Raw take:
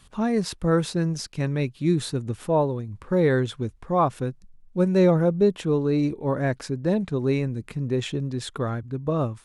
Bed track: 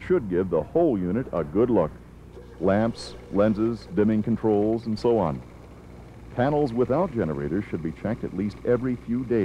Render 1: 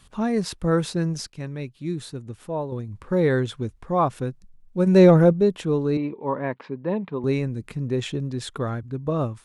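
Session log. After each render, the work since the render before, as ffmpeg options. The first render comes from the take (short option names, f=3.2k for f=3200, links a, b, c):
-filter_complex "[0:a]asplit=3[a][b][c];[a]afade=t=out:st=4.86:d=0.02[d];[b]acontrast=54,afade=t=in:st=4.86:d=0.02,afade=t=out:st=5.32:d=0.02[e];[c]afade=t=in:st=5.32:d=0.02[f];[d][e][f]amix=inputs=3:normalize=0,asettb=1/sr,asplit=3[g][h][i];[g]atrim=end=5.974[j];[h]atrim=start=5.97:end=7.24,asetpts=PTS-STARTPTS,afade=t=in:d=0.004:c=qsin,afade=t=out:st=1.266:d=0.004:c=qsin,highpass=210,equalizer=f=320:t=q:w=4:g=-4,equalizer=f=670:t=q:w=4:g=-4,equalizer=f=980:t=q:w=4:g=8,equalizer=f=1.5k:t=q:w=4:g=-6,lowpass=f=3k:w=0.5412,lowpass=f=3k:w=1.3066[k];[i]atrim=start=7.236[l];[j][k]acrossfade=d=0.004:c1=hsin:c2=qsin[m];[m][l]acrossfade=d=0.004:c1=qsin:c2=hsin,asplit=3[n][o][p];[n]atrim=end=1.302[q];[o]atrim=start=1.298:end=2.722,asetpts=PTS-STARTPTS,volume=-7dB[r];[p]atrim=start=2.718[s];[q][r]acrossfade=d=0.004:c1=hsin:c2=hsin[t];[t][s]acrossfade=d=0.004:c1=hsin:c2=hsin"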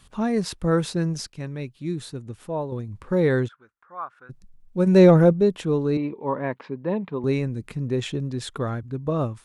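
-filter_complex "[0:a]asplit=3[a][b][c];[a]afade=t=out:st=3.47:d=0.02[d];[b]bandpass=f=1.4k:t=q:w=5.4,afade=t=in:st=3.47:d=0.02,afade=t=out:st=4.29:d=0.02[e];[c]afade=t=in:st=4.29:d=0.02[f];[d][e][f]amix=inputs=3:normalize=0"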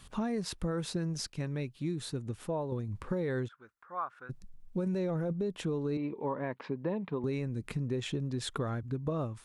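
-af "alimiter=limit=-15dB:level=0:latency=1:release=12,acompressor=threshold=-31dB:ratio=5"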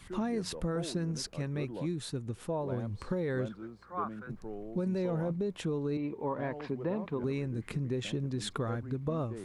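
-filter_complex "[1:a]volume=-21dB[a];[0:a][a]amix=inputs=2:normalize=0"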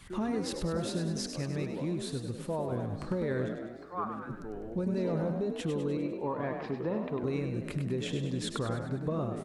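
-filter_complex "[0:a]asplit=8[a][b][c][d][e][f][g][h];[b]adelay=100,afreqshift=42,volume=-7dB[i];[c]adelay=200,afreqshift=84,volume=-12.2dB[j];[d]adelay=300,afreqshift=126,volume=-17.4dB[k];[e]adelay=400,afreqshift=168,volume=-22.6dB[l];[f]adelay=500,afreqshift=210,volume=-27.8dB[m];[g]adelay=600,afreqshift=252,volume=-33dB[n];[h]adelay=700,afreqshift=294,volume=-38.2dB[o];[a][i][j][k][l][m][n][o]amix=inputs=8:normalize=0"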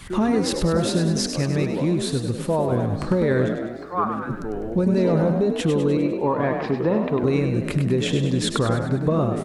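-af "volume=12dB"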